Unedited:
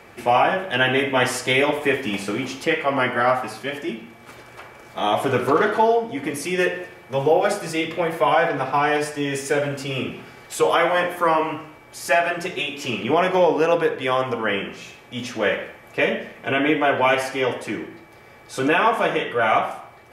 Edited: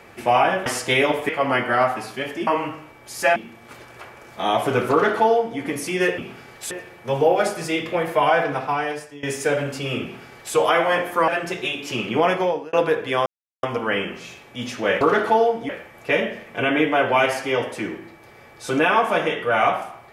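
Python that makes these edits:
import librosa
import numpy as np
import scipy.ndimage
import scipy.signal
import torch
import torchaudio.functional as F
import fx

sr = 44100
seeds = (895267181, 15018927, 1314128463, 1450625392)

y = fx.edit(x, sr, fx.cut(start_s=0.66, length_s=0.59),
    fx.cut(start_s=1.88, length_s=0.88),
    fx.duplicate(start_s=5.49, length_s=0.68, to_s=15.58),
    fx.fade_out_to(start_s=8.5, length_s=0.78, floor_db=-19.5),
    fx.duplicate(start_s=10.07, length_s=0.53, to_s=6.76),
    fx.move(start_s=11.33, length_s=0.89, to_s=3.94),
    fx.fade_out_span(start_s=13.24, length_s=0.43),
    fx.insert_silence(at_s=14.2, length_s=0.37), tone=tone)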